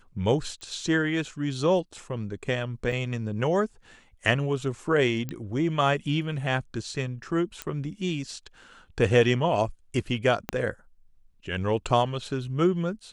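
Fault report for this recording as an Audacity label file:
0.610000	0.610000	pop -30 dBFS
2.920000	2.920000	gap 2.7 ms
5.290000	5.290000	pop -19 dBFS
7.620000	7.620000	pop -15 dBFS
10.490000	10.490000	pop -13 dBFS

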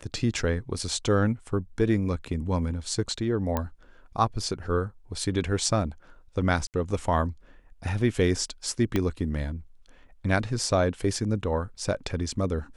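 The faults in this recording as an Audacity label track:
3.570000	3.570000	pop -13 dBFS
6.670000	6.740000	gap 68 ms
8.960000	8.960000	pop -12 dBFS

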